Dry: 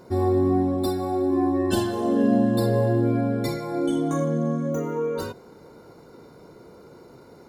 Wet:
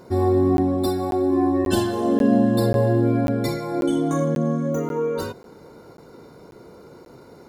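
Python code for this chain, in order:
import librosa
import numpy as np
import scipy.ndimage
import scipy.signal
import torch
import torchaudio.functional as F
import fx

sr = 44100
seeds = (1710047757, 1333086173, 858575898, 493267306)

y = fx.buffer_crackle(x, sr, first_s=0.57, period_s=0.54, block=512, kind='zero')
y = y * 10.0 ** (2.5 / 20.0)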